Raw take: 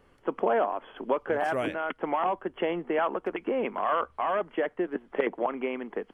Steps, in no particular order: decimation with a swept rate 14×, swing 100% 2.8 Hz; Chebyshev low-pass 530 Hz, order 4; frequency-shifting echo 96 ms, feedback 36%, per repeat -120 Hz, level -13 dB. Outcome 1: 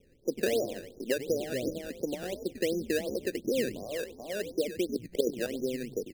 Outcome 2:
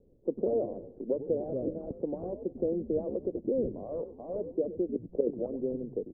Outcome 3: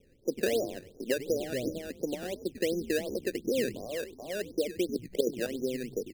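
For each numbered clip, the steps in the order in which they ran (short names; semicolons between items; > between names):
frequency-shifting echo > Chebyshev low-pass > decimation with a swept rate; frequency-shifting echo > decimation with a swept rate > Chebyshev low-pass; Chebyshev low-pass > frequency-shifting echo > decimation with a swept rate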